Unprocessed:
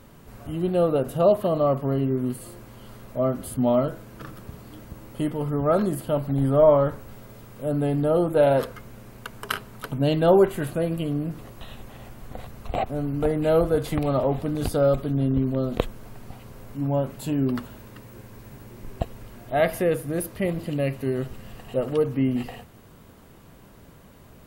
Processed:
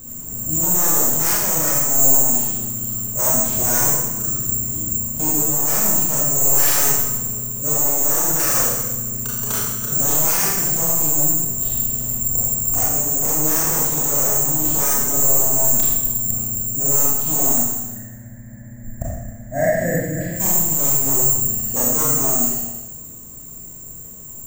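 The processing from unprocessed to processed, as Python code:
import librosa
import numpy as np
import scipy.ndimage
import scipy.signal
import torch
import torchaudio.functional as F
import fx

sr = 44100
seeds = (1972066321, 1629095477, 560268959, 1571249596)

y = fx.low_shelf(x, sr, hz=430.0, db=11.5)
y = (np.kron(y[::6], np.eye(6)[0]) * 6)[:len(y)]
y = fx.curve_eq(y, sr, hz=(280.0, 410.0, 600.0, 1200.0, 1800.0, 2600.0, 5300.0, 8800.0), db=(0, -19, 6, -17, 13, -17, -18, -24), at=(17.8, 20.31))
y = 10.0 ** (0.0 / 20.0) * (np.abs((y / 10.0 ** (0.0 / 20.0) + 3.0) % 4.0 - 2.0) - 1.0)
y = fx.rider(y, sr, range_db=4, speed_s=0.5)
y = fx.rev_schroeder(y, sr, rt60_s=1.1, comb_ms=26, drr_db=-5.5)
y = y * 10.0 ** (-10.0 / 20.0)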